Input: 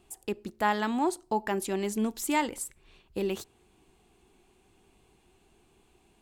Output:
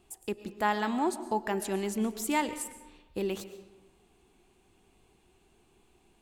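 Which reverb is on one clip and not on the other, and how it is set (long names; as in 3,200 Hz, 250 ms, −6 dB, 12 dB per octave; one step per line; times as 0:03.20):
comb and all-pass reverb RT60 1.1 s, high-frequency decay 0.65×, pre-delay 80 ms, DRR 12 dB
level −1.5 dB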